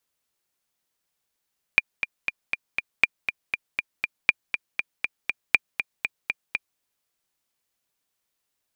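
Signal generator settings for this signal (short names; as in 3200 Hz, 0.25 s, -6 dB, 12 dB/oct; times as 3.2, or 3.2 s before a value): metronome 239 bpm, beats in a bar 5, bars 4, 2400 Hz, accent 9 dB -2 dBFS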